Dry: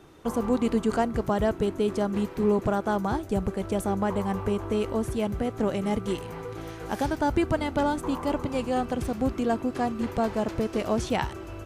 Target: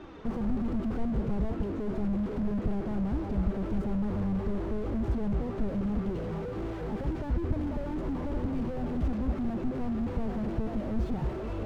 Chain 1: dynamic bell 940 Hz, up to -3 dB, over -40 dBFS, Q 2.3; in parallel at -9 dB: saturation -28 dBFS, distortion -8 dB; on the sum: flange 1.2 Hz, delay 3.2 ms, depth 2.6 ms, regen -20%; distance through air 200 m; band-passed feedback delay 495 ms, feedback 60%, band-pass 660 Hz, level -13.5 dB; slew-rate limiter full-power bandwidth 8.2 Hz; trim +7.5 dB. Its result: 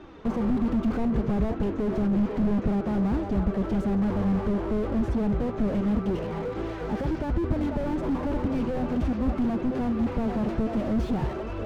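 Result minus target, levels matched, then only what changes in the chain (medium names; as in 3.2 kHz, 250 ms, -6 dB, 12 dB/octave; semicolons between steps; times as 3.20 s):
slew-rate limiter: distortion -6 dB; saturation: distortion -4 dB
change: saturation -36 dBFS, distortion -4 dB; change: slew-rate limiter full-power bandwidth 3.5 Hz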